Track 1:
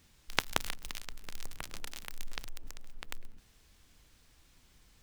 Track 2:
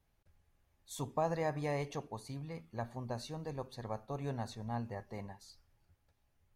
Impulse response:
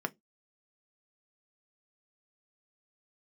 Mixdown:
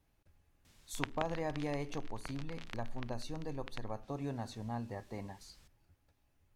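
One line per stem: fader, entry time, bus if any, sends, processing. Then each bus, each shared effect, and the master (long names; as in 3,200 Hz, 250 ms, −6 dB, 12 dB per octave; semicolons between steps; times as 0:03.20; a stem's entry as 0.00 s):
−0.5 dB, 0.65 s, no send, treble cut that deepens with the level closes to 2,400 Hz, closed at −34.5 dBFS
+1.5 dB, 0.00 s, no send, hollow resonant body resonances 290/2,600 Hz, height 7 dB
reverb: not used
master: downward compressor 1.5 to 1, threshold −41 dBFS, peak gain reduction 6.5 dB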